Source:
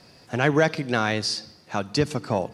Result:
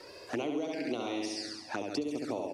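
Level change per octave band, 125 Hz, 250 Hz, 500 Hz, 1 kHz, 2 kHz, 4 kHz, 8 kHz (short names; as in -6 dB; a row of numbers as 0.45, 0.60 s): -23.0, -7.0, -10.5, -13.0, -16.0, -11.0, -10.0 dB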